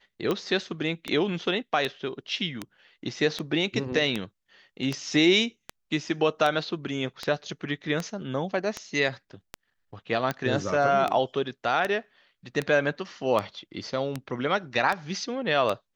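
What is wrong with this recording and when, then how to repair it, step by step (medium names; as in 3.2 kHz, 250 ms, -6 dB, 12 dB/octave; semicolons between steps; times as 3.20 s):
tick 78 rpm -14 dBFS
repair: de-click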